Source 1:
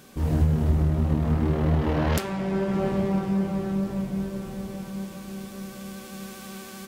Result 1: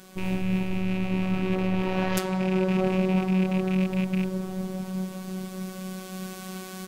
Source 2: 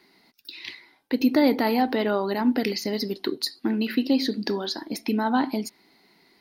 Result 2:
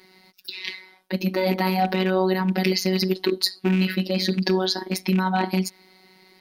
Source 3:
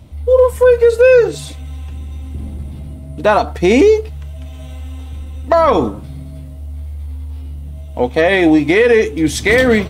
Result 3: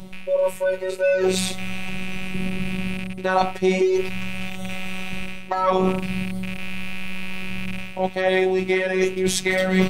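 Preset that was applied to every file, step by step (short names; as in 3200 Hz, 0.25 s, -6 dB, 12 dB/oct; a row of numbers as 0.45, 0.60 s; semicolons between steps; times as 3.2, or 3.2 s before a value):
rattling part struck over -27 dBFS, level -24 dBFS; reverse; compressor 10:1, threshold -21 dBFS; reverse; robotiser 187 Hz; normalise peaks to -2 dBFS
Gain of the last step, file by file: +3.0, +8.0, +7.5 dB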